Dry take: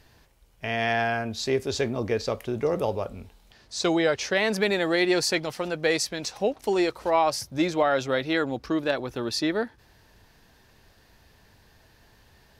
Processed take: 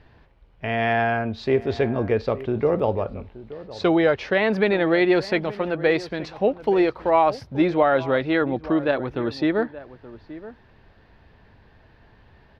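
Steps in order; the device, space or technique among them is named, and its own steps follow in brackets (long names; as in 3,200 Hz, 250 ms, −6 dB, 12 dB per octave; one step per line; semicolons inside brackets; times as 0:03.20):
shout across a valley (high-frequency loss of the air 370 metres; slap from a distant wall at 150 metres, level −16 dB)
level +5.5 dB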